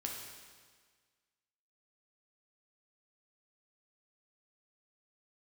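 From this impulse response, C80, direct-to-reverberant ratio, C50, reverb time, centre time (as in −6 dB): 4.0 dB, −1.0 dB, 2.0 dB, 1.6 s, 66 ms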